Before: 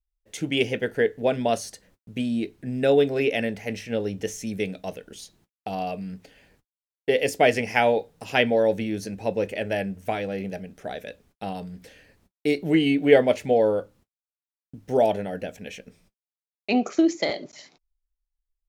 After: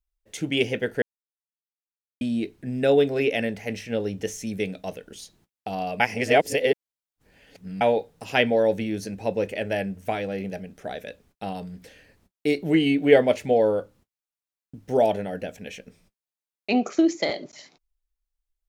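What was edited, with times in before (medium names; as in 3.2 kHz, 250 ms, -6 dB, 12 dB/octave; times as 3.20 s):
1.02–2.21 s: mute
6.00–7.81 s: reverse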